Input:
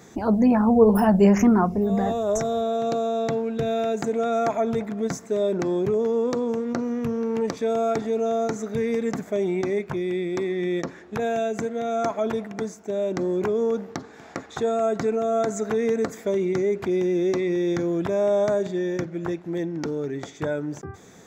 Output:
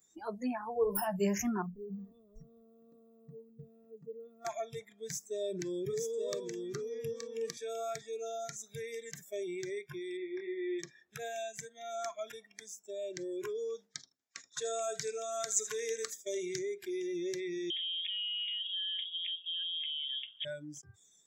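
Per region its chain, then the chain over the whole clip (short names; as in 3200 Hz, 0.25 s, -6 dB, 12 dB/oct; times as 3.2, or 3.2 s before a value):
1.62–4.45 comb 4.3 ms, depth 70% + modulation noise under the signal 23 dB + running mean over 58 samples
5.01–7.57 bell 210 Hz +6 dB 0.73 oct + echo 0.874 s -3.5 dB
10.17–10.79 LPF 2100 Hz + doubler 25 ms -4 dB
13.76–16.59 expander -33 dBFS + bell 5900 Hz +8 dB 2 oct + feedback echo 79 ms, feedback 26%, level -13 dB
17.7–20.45 compressor 8:1, threshold -26 dBFS + air absorption 160 m + inverted band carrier 3500 Hz
whole clip: spectral noise reduction 21 dB; pre-emphasis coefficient 0.8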